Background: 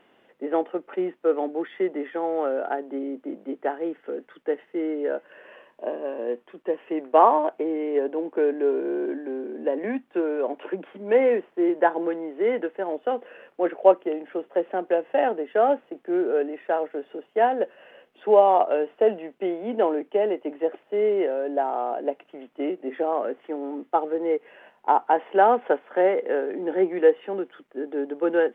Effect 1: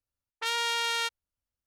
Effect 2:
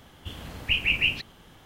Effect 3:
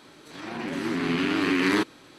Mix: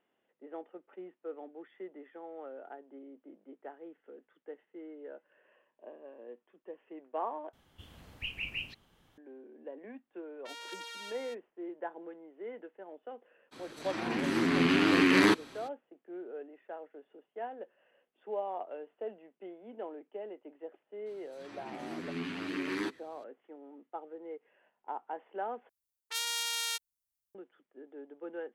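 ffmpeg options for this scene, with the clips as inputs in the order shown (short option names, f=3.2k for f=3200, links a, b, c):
-filter_complex "[1:a]asplit=2[a][b];[3:a]asplit=2[c][d];[0:a]volume=-20dB[e];[a]aecho=1:1:227:0.631[f];[d]asplit=2[g][h];[h]adelay=10.1,afreqshift=1.1[i];[g][i]amix=inputs=2:normalize=1[j];[b]crystalizer=i=6:c=0[k];[e]asplit=3[l][m][n];[l]atrim=end=7.534[o];[2:a]atrim=end=1.65,asetpts=PTS-STARTPTS,volume=-14.5dB[p];[m]atrim=start=9.176:end=25.694[q];[k]atrim=end=1.66,asetpts=PTS-STARTPTS,volume=-14.5dB[r];[n]atrim=start=27.346[s];[f]atrim=end=1.66,asetpts=PTS-STARTPTS,volume=-17dB,afade=t=in:d=0.004:c=hsin,afade=t=out:st=1.656:d=0.004:c=hsin,adelay=10030[t];[c]atrim=end=2.18,asetpts=PTS-STARTPTS,volume=-0.5dB,afade=t=in:d=0.02,afade=t=out:st=2.16:d=0.02,adelay=13510[u];[j]atrim=end=2.18,asetpts=PTS-STARTPTS,volume=-10.5dB,afade=t=in:d=0.004:c=hsin,afade=t=out:st=2.176:d=0.004:c=hsin,adelay=21060[v];[o][p]acrossfade=d=0.004:c1=hsin:c2=hsin[w];[w][q]acrossfade=d=0.004:c1=hsin:c2=hsin[x];[x][r]acrossfade=d=0.004:c1=hsin:c2=hsin[y];[y][s]acrossfade=d=0.004:c1=hsin:c2=hsin[z];[z][t][u][v]amix=inputs=4:normalize=0"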